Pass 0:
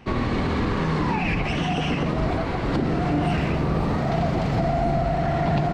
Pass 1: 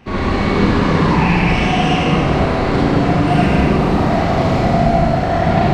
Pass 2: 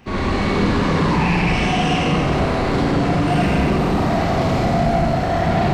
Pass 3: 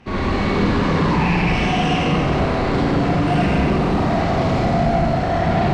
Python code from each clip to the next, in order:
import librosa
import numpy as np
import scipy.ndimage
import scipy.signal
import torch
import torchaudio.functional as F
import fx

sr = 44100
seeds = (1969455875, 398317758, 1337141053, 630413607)

y1 = fx.rev_schroeder(x, sr, rt60_s=1.8, comb_ms=31, drr_db=-8.0)
y1 = F.gain(torch.from_numpy(y1), 1.0).numpy()
y2 = fx.high_shelf(y1, sr, hz=6800.0, db=8.0)
y2 = 10.0 ** (-7.5 / 20.0) * np.tanh(y2 / 10.0 ** (-7.5 / 20.0))
y2 = F.gain(torch.from_numpy(y2), -2.0).numpy()
y3 = fx.air_absorb(y2, sr, metres=51.0)